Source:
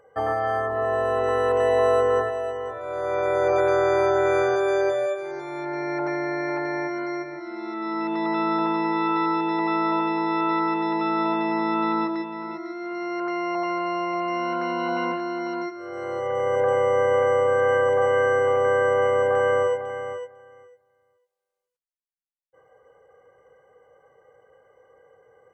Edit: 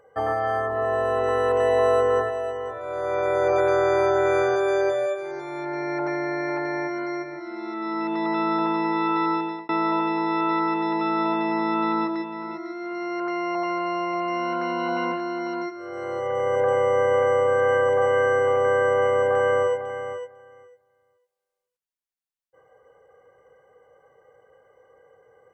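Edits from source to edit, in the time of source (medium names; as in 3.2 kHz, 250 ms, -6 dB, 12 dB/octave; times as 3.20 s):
9.34–9.69 s: fade out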